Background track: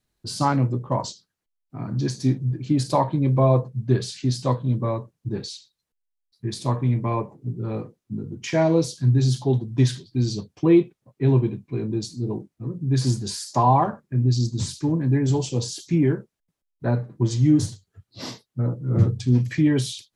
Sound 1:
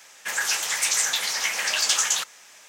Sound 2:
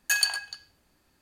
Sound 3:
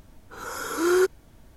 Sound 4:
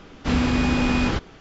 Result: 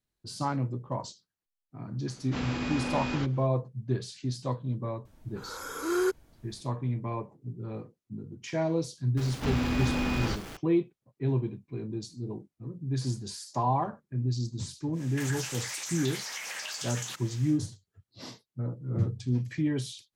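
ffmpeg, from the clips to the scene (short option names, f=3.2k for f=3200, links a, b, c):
-filter_complex "[4:a]asplit=2[a][b];[0:a]volume=-9.5dB[c];[a]lowshelf=f=110:g=-11[d];[b]aeval=exprs='val(0)+0.5*0.0335*sgn(val(0))':c=same[e];[1:a]acompressor=threshold=-31dB:ratio=6:attack=3.2:release=140:knee=1:detection=peak[f];[d]atrim=end=1.4,asetpts=PTS-STARTPTS,volume=-9.5dB,afade=t=in:d=0.004:c=hsin,afade=t=out:st=1.396:d=0.004:c=hsin,adelay=2070[g];[3:a]atrim=end=1.56,asetpts=PTS-STARTPTS,volume=-6.5dB,afade=t=in:d=0.004:c=hsin,afade=t=out:st=1.556:d=0.004:c=hsin,adelay=222705S[h];[e]atrim=end=1.4,asetpts=PTS-STARTPTS,volume=-9dB,afade=t=in:d=0.004:c=hsin,afade=t=out:st=1.396:d=0.004:c=hsin,adelay=9170[i];[f]atrim=end=2.68,asetpts=PTS-STARTPTS,volume=-3.5dB,afade=t=in:d=0.1,afade=t=out:st=2.58:d=0.1,adelay=657972S[j];[c][g][h][i][j]amix=inputs=5:normalize=0"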